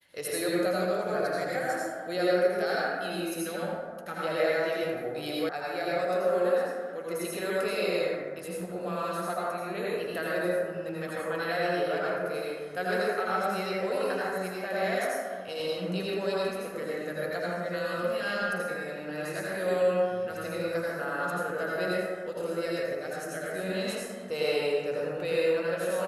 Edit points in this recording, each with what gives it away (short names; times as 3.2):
5.49 sound cut off